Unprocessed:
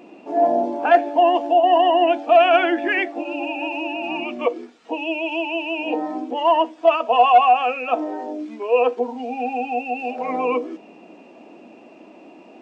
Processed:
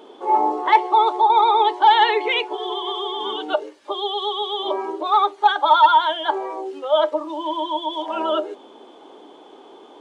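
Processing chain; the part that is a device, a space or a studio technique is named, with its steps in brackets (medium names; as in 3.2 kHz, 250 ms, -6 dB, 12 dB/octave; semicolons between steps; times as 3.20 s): nightcore (tape speed +26%)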